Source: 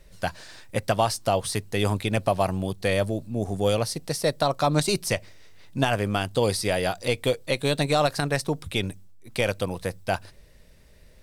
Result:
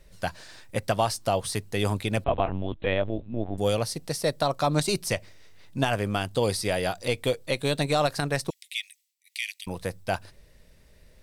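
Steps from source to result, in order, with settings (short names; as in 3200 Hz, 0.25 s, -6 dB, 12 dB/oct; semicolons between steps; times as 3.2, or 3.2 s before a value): 2.24–3.58 LPC vocoder at 8 kHz pitch kept; 8.5–9.67 steep high-pass 1900 Hz 96 dB/oct; gain -2 dB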